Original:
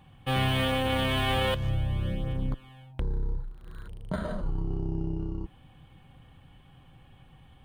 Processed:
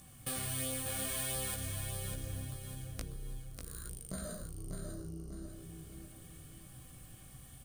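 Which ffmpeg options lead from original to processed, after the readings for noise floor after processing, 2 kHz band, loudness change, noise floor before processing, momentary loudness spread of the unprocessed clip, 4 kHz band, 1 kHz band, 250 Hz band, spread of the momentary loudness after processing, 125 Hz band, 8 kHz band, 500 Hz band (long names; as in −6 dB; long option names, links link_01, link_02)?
−55 dBFS, −13.5 dB, −9.5 dB, −55 dBFS, 17 LU, −12.5 dB, −17.0 dB, −12.5 dB, 18 LU, −12.0 dB, can't be measured, −14.0 dB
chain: -filter_complex "[0:a]highshelf=frequency=8600:gain=3.5,acompressor=threshold=-38dB:ratio=6,aexciter=amount=12.5:drive=5.1:freq=4700,flanger=delay=15.5:depth=7.2:speed=0.73,asuperstop=centerf=890:order=4:qfactor=3.2,asplit=2[link_01][link_02];[link_02]aecho=0:1:595|1190|1785|2380|2975:0.531|0.207|0.0807|0.0315|0.0123[link_03];[link_01][link_03]amix=inputs=2:normalize=0,aresample=32000,aresample=44100,volume=1dB"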